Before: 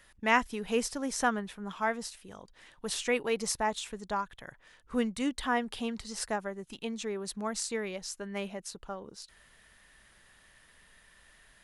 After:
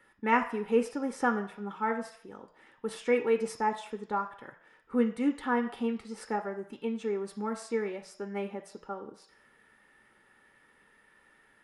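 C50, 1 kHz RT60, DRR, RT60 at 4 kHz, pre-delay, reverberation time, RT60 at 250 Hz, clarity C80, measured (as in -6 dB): 12.0 dB, 0.60 s, 6.5 dB, 0.60 s, 3 ms, 0.60 s, 0.45 s, 15.0 dB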